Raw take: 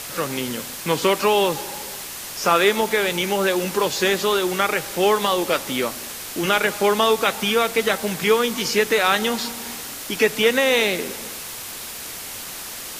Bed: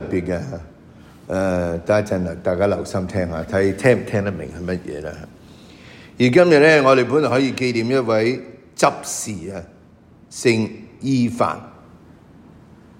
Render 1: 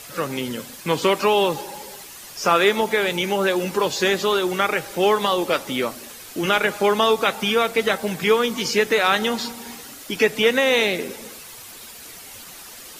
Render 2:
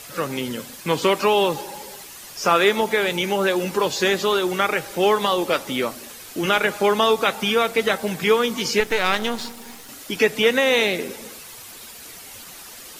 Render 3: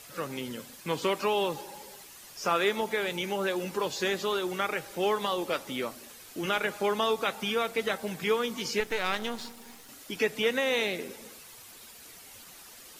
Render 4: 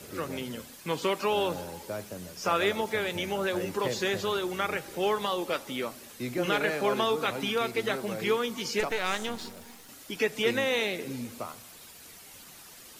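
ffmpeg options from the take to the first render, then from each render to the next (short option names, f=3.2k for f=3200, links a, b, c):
-af "afftdn=nr=9:nf=-34"
-filter_complex "[0:a]asettb=1/sr,asplit=3[a][b][c];[a]atrim=end=8.804[d];[b]atrim=start=8.8:end=9.89,asetpts=PTS-STARTPTS,afade=t=in:d=0.004:c=qsin,afade=t=out:st=1.086:d=0.004:c=qsin,aeval=exprs='if(lt(val(0),0),0.251*val(0),val(0))':c=same[e];[c]atrim=start=9.886[f];[d][e]acrossfade=d=0.004:c1=hsin:c2=qsin[g];[g][f]acrossfade=d=0.004:c1=qsin:c2=hsin"
-af "volume=-9.5dB"
-filter_complex "[1:a]volume=-20dB[a];[0:a][a]amix=inputs=2:normalize=0"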